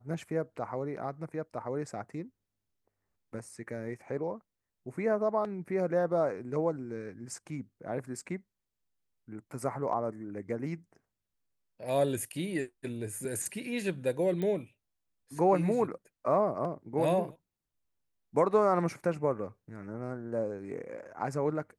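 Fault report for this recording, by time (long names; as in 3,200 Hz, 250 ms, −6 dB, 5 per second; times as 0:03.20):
0:14.42: click −23 dBFS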